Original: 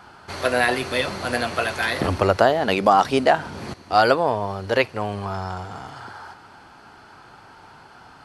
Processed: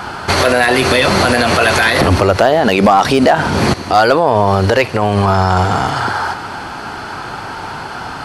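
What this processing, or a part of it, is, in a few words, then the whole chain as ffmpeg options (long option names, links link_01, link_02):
loud club master: -af "acompressor=threshold=-27dB:ratio=1.5,asoftclip=type=hard:threshold=-13.5dB,alimiter=level_in=22dB:limit=-1dB:release=50:level=0:latency=1,volume=-1dB"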